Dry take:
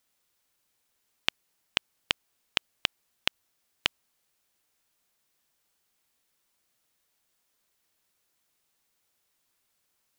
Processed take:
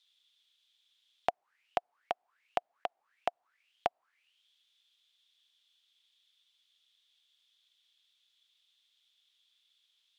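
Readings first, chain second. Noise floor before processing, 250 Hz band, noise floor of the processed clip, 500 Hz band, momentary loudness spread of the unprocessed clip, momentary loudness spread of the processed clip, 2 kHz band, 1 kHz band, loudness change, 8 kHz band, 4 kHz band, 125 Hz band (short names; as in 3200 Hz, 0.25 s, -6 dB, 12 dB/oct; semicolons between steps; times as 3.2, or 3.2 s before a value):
-76 dBFS, -6.5 dB, -80 dBFS, +9.0 dB, 0 LU, 4 LU, -13.5 dB, +7.5 dB, -7.0 dB, under -15 dB, -20.0 dB, -10.5 dB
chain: negative-ratio compressor -27 dBFS, ratio -0.5; auto-wah 710–3800 Hz, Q 10, down, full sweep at -43.5 dBFS; gain +14.5 dB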